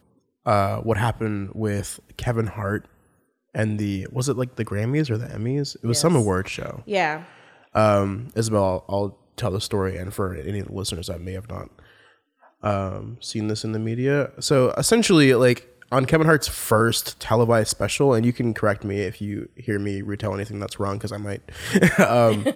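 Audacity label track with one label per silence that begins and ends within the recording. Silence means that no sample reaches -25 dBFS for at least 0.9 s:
11.630000	12.640000	silence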